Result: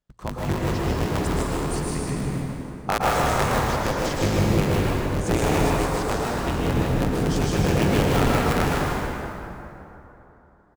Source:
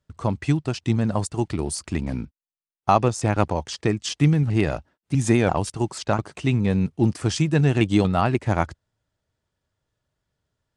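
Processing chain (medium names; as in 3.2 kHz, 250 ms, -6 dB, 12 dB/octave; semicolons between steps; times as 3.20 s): cycle switcher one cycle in 3, inverted; on a send: delay 155 ms -5 dB; on the sum: plate-style reverb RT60 3.2 s, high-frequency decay 0.55×, pre-delay 100 ms, DRR -4.5 dB; trim -7.5 dB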